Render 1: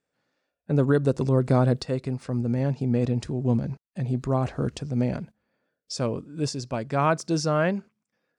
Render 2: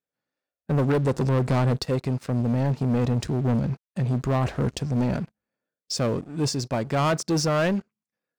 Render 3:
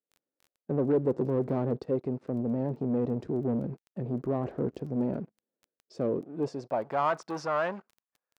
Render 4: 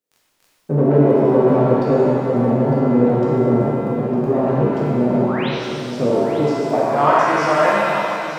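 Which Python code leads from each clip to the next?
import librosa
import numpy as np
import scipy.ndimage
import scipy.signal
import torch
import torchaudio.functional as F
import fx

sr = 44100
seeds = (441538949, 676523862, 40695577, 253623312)

y1 = fx.leveller(x, sr, passes=3)
y1 = y1 * 10.0 ** (-6.0 / 20.0)
y2 = fx.filter_sweep_bandpass(y1, sr, from_hz=370.0, to_hz=1000.0, start_s=6.15, end_s=7.13, q=1.5)
y2 = fx.vibrato(y2, sr, rate_hz=7.9, depth_cents=35.0)
y2 = fx.dmg_crackle(y2, sr, seeds[0], per_s=10.0, level_db=-45.0)
y3 = fx.spec_paint(y2, sr, seeds[1], shape='rise', start_s=5.2, length_s=0.29, low_hz=600.0, high_hz=4300.0, level_db=-41.0)
y3 = y3 + 10.0 ** (-11.0 / 20.0) * np.pad(y3, (int(905 * sr / 1000.0), 0))[:len(y3)]
y3 = fx.rev_shimmer(y3, sr, seeds[2], rt60_s=2.2, semitones=7, shimmer_db=-8, drr_db=-6.0)
y3 = y3 * 10.0 ** (7.0 / 20.0)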